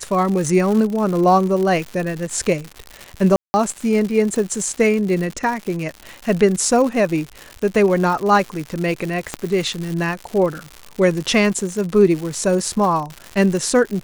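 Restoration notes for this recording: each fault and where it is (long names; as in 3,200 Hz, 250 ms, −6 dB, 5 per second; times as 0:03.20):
surface crackle 180 per second −24 dBFS
0:03.36–0:03.54: drop-out 180 ms
0:09.34: click −8 dBFS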